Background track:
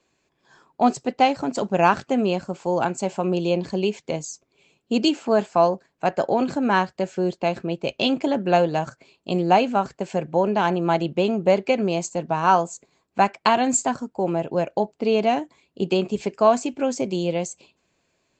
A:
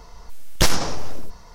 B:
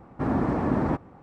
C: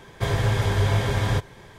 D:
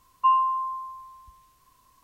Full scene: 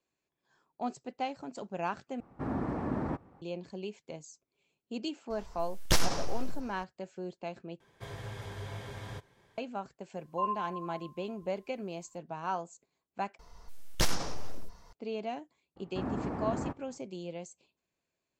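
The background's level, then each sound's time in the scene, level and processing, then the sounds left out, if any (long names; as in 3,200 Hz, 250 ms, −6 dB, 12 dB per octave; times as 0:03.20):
background track −17 dB
0:02.20: overwrite with B −9 dB
0:05.30: mix in A −8.5 dB
0:07.80: overwrite with C −18 dB + low-shelf EQ 80 Hz −8 dB
0:10.14: mix in D −10 dB + chorus effect 1 Hz
0:13.39: overwrite with A −11 dB
0:15.76: mix in B −10.5 dB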